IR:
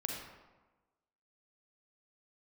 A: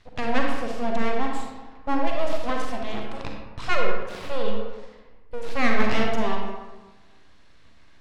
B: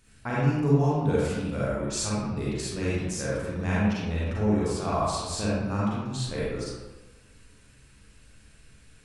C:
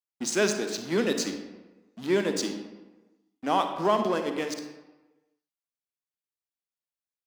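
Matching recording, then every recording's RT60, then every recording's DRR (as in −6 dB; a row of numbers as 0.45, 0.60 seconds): A; 1.2, 1.2, 1.2 seconds; 0.0, −8.0, 6.0 decibels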